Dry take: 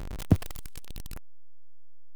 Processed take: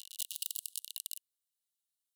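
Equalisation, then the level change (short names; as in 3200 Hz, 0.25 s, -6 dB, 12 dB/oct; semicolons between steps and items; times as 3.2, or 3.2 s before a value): rippled Chebyshev high-pass 2800 Hz, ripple 6 dB; tilt +1.5 dB/oct; +6.0 dB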